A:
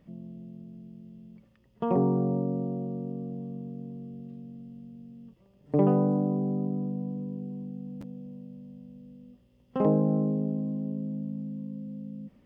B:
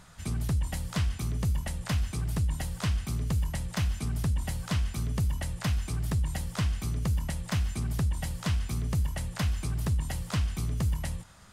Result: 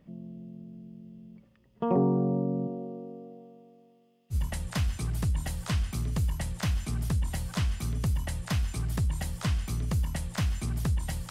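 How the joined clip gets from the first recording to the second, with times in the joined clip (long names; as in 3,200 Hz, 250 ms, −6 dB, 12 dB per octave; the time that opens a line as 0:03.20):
A
0:02.67–0:04.36: high-pass filter 230 Hz → 1,400 Hz
0:04.33: continue with B from 0:01.47, crossfade 0.06 s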